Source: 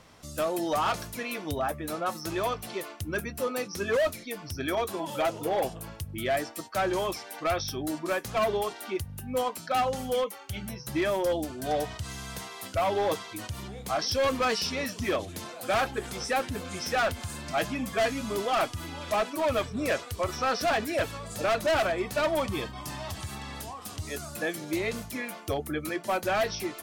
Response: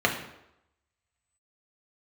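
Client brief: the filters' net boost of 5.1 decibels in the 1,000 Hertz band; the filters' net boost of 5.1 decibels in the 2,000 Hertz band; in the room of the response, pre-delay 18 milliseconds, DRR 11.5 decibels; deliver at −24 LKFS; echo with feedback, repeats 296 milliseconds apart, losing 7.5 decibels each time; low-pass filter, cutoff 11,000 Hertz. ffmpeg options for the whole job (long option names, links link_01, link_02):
-filter_complex "[0:a]lowpass=11000,equalizer=frequency=1000:width_type=o:gain=6,equalizer=frequency=2000:width_type=o:gain=4.5,aecho=1:1:296|592|888|1184|1480:0.422|0.177|0.0744|0.0312|0.0131,asplit=2[link_01][link_02];[1:a]atrim=start_sample=2205,adelay=18[link_03];[link_02][link_03]afir=irnorm=-1:irlink=0,volume=-26.5dB[link_04];[link_01][link_04]amix=inputs=2:normalize=0,volume=2dB"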